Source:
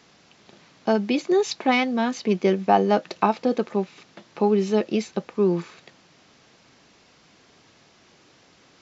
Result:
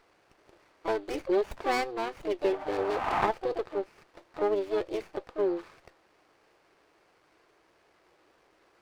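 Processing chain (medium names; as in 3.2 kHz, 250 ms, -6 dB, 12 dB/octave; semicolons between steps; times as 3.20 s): spectral replace 2.50–3.19 s, 600–1600 Hz both; harmony voices +7 st -9 dB; brick-wall FIR band-pass 290–4800 Hz; sliding maximum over 9 samples; trim -6.5 dB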